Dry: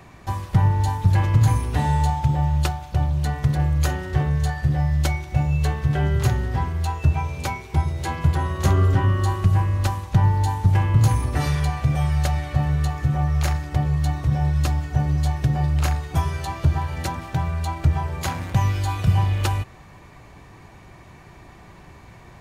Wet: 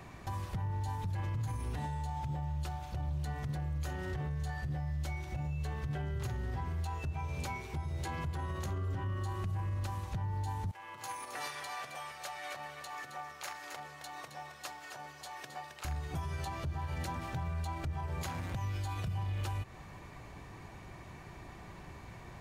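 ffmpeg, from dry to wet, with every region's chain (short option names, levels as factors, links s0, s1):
-filter_complex "[0:a]asettb=1/sr,asplit=3[s0][s1][s2];[s0]atrim=end=10.714[s3];[s1]atrim=start=10.71:end=15.85,asetpts=PTS-STARTPTS,afade=t=in:d=0.004:c=qsin,afade=t=out:st=5.136:d=0.004:c=qsin,acompressor=threshold=0.0562:ratio=3:attack=3.2:release=140:knee=1:detection=peak,highpass=710,aecho=1:1:267:0.376,atrim=end_sample=226674[s4];[s2]atrim=start=15.846[s5];[s3][s4]acrossfade=d=0.004:c1=hsin:c2=qsin[s6];[s6][s5]acrossfade=d=0.004:c1=qsin:c2=hsin,acompressor=threshold=0.0355:ratio=3,alimiter=level_in=1.19:limit=0.0631:level=0:latency=1:release=37,volume=0.841,volume=0.631"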